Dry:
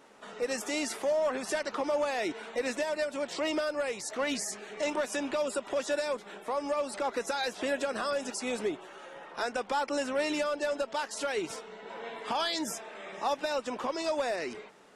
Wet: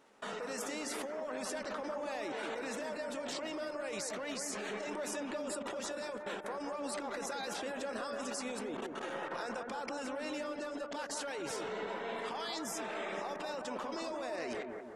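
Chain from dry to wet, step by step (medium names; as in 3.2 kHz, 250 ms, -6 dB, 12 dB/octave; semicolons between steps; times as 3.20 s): level held to a coarse grid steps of 24 dB; bucket-brigade echo 179 ms, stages 2048, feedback 59%, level -4 dB; trim +7 dB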